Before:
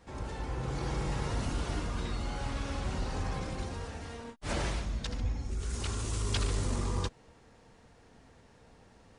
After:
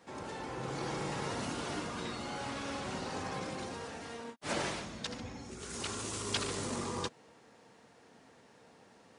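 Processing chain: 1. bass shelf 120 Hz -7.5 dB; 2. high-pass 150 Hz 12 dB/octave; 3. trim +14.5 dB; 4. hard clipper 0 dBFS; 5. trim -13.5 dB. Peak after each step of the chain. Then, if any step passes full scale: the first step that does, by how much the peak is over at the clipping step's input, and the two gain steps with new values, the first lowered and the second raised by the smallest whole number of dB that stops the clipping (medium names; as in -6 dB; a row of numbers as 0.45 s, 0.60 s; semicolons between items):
-19.0 dBFS, -19.5 dBFS, -5.0 dBFS, -5.0 dBFS, -18.5 dBFS; nothing clips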